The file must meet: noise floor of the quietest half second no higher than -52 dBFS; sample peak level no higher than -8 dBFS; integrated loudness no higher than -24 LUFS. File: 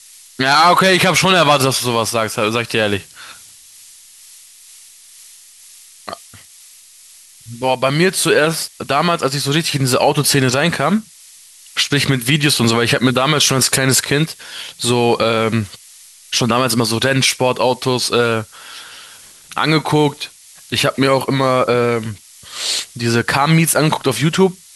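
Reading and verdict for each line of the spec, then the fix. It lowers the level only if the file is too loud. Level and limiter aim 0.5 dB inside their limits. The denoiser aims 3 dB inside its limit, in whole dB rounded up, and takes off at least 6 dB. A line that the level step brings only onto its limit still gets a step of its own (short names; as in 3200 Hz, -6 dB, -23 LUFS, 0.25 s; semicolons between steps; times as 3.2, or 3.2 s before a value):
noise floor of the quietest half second -44 dBFS: fail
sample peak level -2.0 dBFS: fail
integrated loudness -15.0 LUFS: fail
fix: gain -9.5 dB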